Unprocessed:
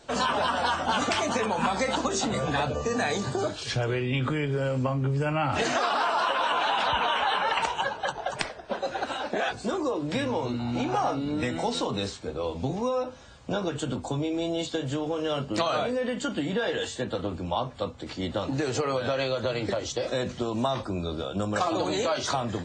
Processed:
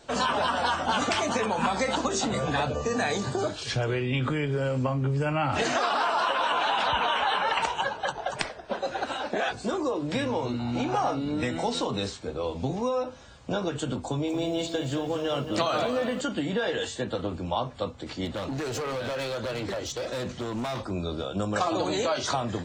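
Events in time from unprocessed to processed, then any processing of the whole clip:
14.05–16.21 lo-fi delay 0.226 s, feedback 35%, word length 9-bit, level -9 dB
18.25–20.91 hard clip -28.5 dBFS

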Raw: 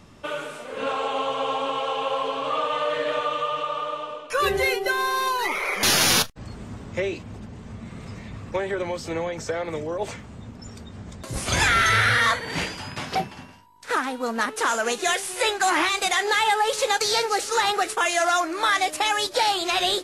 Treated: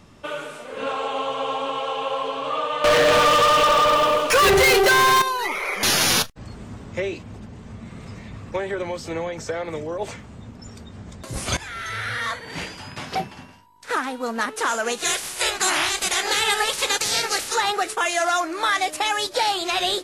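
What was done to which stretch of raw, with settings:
2.84–5.22 sample leveller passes 5
11.57–13.31 fade in, from -19.5 dB
14.97–17.54 spectral limiter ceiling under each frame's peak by 19 dB

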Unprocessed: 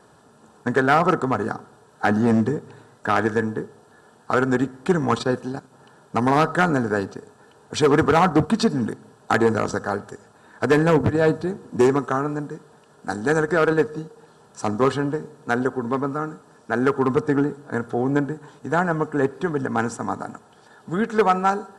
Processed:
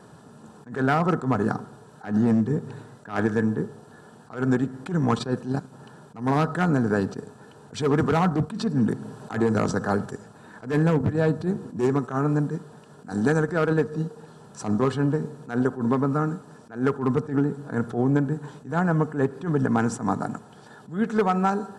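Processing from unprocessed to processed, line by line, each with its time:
8–10.06 three-band squash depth 40%
whole clip: bell 160 Hz +8.5 dB 1.6 oct; compressor, threshold -19 dBFS; attack slew limiter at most 170 dB/s; gain +1.5 dB

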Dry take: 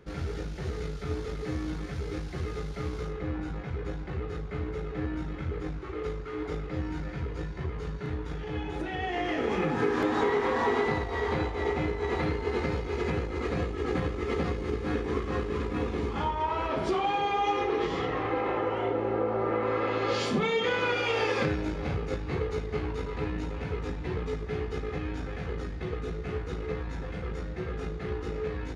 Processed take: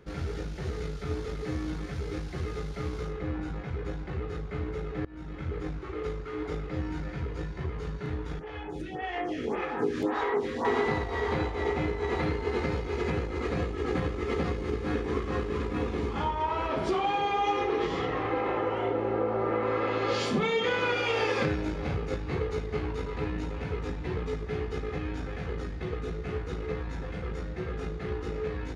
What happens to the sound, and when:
5.05–5.66 fade in equal-power, from -23.5 dB
8.39–10.65 photocell phaser 1.8 Hz

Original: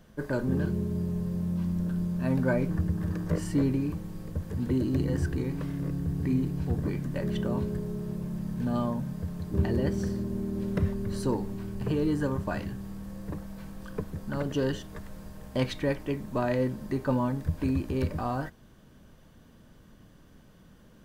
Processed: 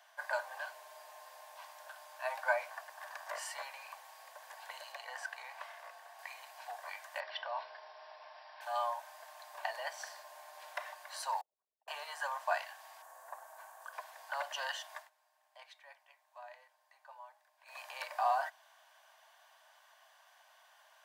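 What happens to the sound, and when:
4.92–6.19 high shelf 5000 Hz -6.5 dB
7.2–8.61 brick-wall FIR band-pass 160–5700 Hz
11.41–11.88 formant sharpening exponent 3
13.02–13.93 band shelf 3300 Hz -10.5 dB
14.96–17.79 dip -21 dB, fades 0.14 s
whole clip: steep high-pass 660 Hz 72 dB/oct; tilt -1.5 dB/oct; notch 1300 Hz, Q 6.8; gain +4 dB

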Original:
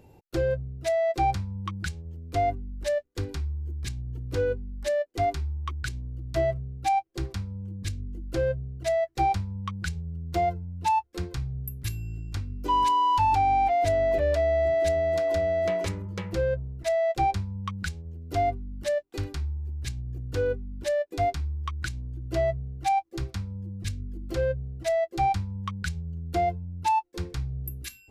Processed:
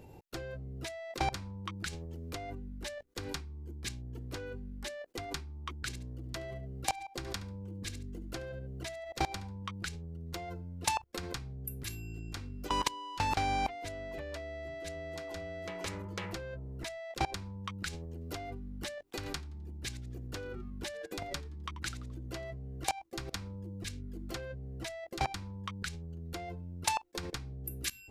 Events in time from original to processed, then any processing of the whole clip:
5.86–9.63 feedback echo 71 ms, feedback 19%, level -15 dB
19.16–22.44 frequency-shifting echo 86 ms, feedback 34%, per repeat -130 Hz, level -20 dB
whole clip: level quantiser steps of 22 dB; spectral compressor 2:1; gain +6.5 dB

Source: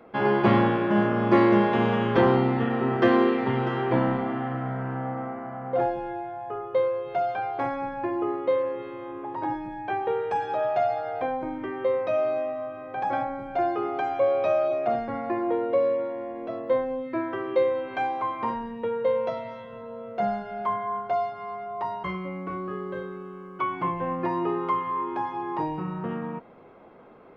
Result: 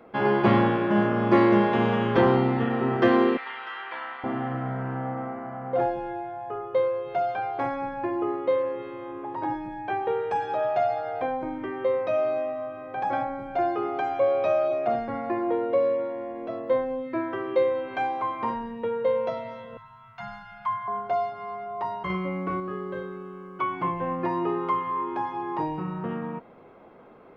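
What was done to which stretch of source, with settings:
3.37–4.24 Butterworth band-pass 2400 Hz, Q 0.71
19.77–20.88 elliptic band-stop 160–910 Hz
22.1–22.6 gain +4 dB

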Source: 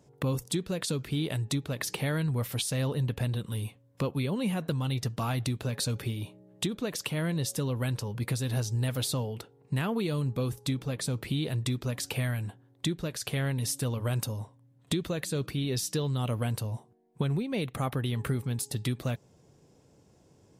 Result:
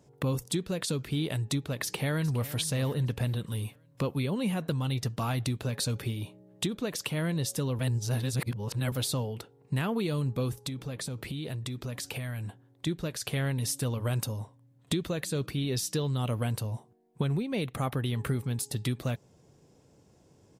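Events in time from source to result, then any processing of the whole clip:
1.79–2.52 echo throw 0.41 s, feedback 45%, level -15.5 dB
7.79–8.92 reverse
10.67–12.87 compressor, threshold -32 dBFS

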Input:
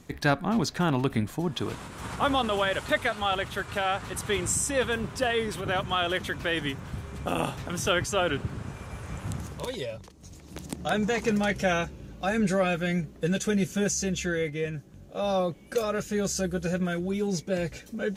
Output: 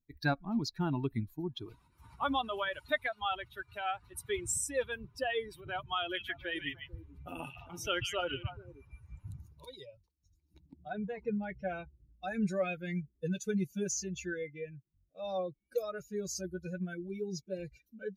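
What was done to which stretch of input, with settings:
6–8.99 delay with a stepping band-pass 0.147 s, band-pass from 2500 Hz, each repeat -1.4 oct, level -0.5 dB
10.58–12.23 tape spacing loss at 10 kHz 22 dB
whole clip: per-bin expansion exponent 2; gain -3.5 dB

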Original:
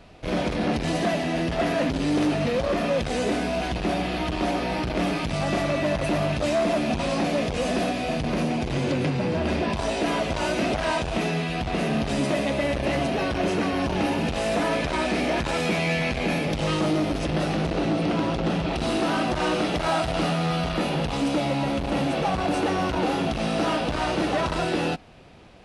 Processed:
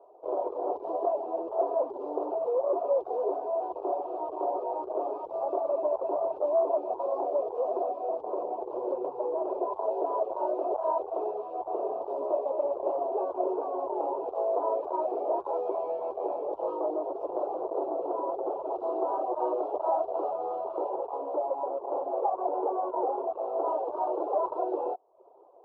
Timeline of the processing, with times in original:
20.9–23.67 tone controls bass -6 dB, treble -10 dB
whole clip: elliptic band-pass 380–1000 Hz, stop band 40 dB; reverb removal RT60 0.54 s

